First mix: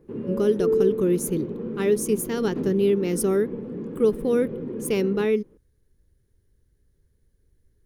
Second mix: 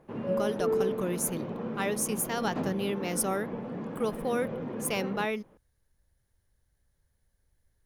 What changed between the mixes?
background +6.0 dB
master: add low shelf with overshoot 530 Hz −8 dB, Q 3

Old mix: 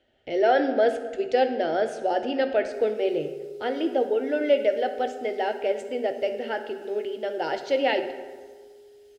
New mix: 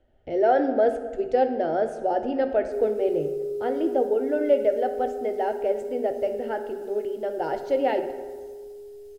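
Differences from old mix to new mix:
background +8.5 dB
master: remove meter weighting curve D

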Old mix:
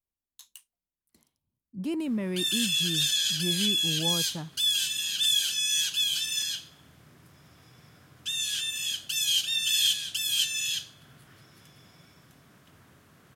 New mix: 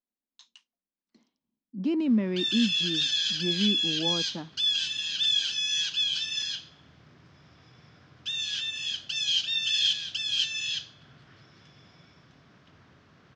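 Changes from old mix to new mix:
speech: add low shelf with overshoot 160 Hz −11.5 dB, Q 3
master: add Butterworth low-pass 5,700 Hz 36 dB per octave

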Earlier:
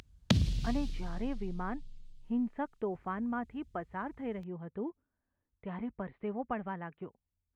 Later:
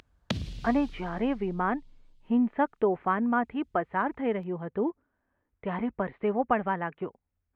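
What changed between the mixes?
speech +11.5 dB
master: add bass and treble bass −7 dB, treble −6 dB

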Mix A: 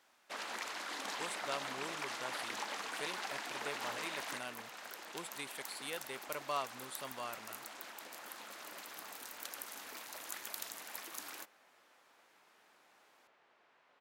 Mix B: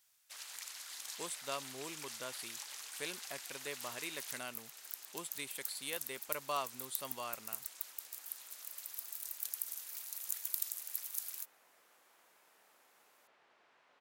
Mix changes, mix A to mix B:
first sound: add first-order pre-emphasis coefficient 0.97
master: add high-shelf EQ 5,300 Hz +5.5 dB

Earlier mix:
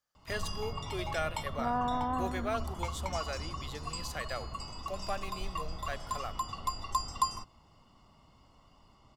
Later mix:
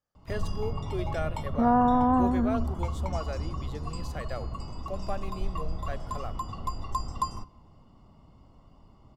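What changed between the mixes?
first sound: send on
second sound +7.5 dB
master: add tilt shelving filter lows +7.5 dB, about 920 Hz

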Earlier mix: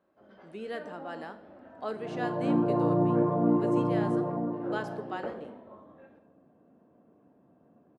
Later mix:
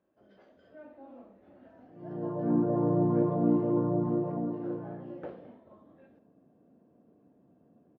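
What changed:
speech: muted
first sound: send −9.0 dB
master: add parametric band 1,100 Hz −7 dB 1.4 octaves

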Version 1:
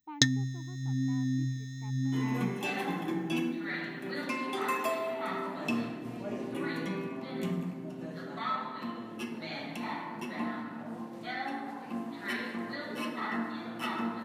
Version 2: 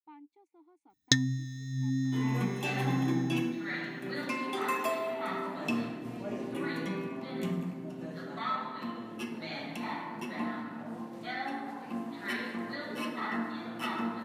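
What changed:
speech −8.5 dB
first sound: entry +0.90 s

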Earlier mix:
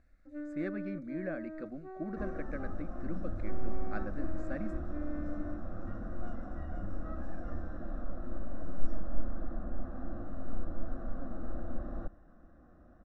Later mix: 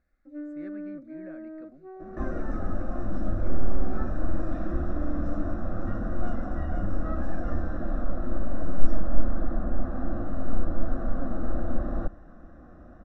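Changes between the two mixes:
speech −9.5 dB
first sound: add spectral tilt −2.5 dB per octave
second sound +10.0 dB

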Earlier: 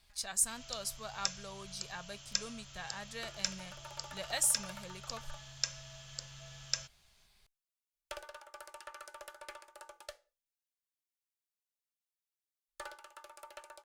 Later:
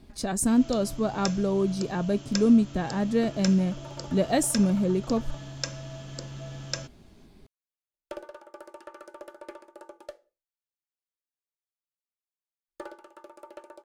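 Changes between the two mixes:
speech: add low-shelf EQ 330 Hz +10 dB
second sound −7.0 dB
master: remove guitar amp tone stack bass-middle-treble 10-0-10

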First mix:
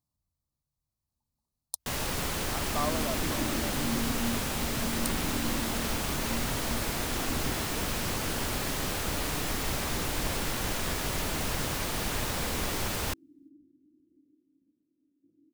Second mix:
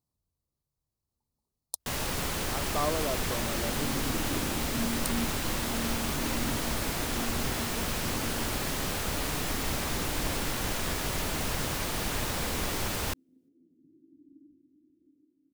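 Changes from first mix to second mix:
speech: add parametric band 420 Hz +9.5 dB 0.65 octaves
second sound: entry +0.90 s

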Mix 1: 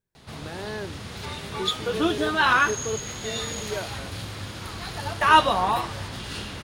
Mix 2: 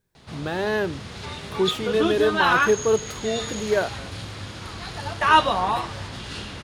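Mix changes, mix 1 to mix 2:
speech +10.5 dB
background: add low-pass filter 8,800 Hz 12 dB per octave

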